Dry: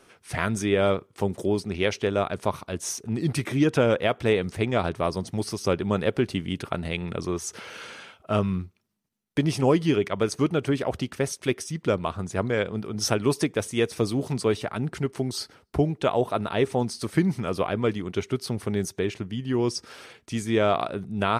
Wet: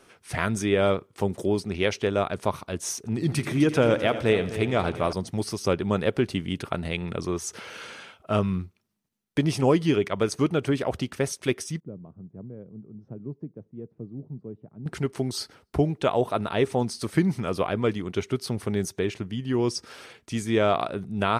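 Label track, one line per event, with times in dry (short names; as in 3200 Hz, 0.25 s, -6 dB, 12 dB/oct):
2.980000	5.130000	multi-head echo 85 ms, heads first and third, feedback 46%, level -14 dB
11.800000	14.860000	ladder band-pass 180 Hz, resonance 35%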